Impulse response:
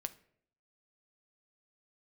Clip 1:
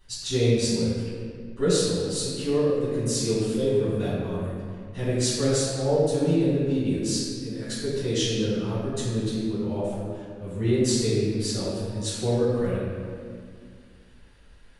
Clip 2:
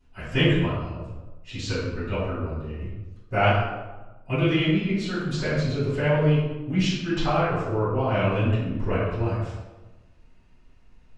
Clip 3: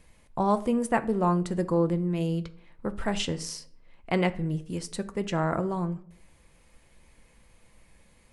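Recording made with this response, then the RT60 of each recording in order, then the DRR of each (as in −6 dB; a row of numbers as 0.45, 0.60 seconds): 3; 2.1, 1.2, 0.65 seconds; −11.0, −14.0, 9.5 decibels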